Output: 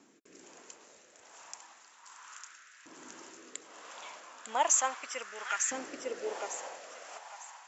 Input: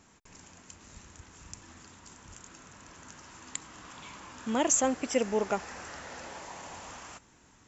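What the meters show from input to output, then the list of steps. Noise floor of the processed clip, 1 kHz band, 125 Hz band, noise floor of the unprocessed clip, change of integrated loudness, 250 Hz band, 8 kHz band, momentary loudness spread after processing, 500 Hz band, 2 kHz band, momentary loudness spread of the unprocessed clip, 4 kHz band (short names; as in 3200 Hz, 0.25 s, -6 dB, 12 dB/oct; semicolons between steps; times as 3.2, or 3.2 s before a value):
-60 dBFS, +1.0 dB, under -20 dB, -61 dBFS, -1.5 dB, -15.5 dB, n/a, 24 LU, -7.0 dB, +1.0 dB, 24 LU, -1.0 dB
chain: rotary speaker horn 1.2 Hz; thinning echo 0.901 s, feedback 32%, high-pass 980 Hz, level -6 dB; LFO high-pass saw up 0.35 Hz 280–1700 Hz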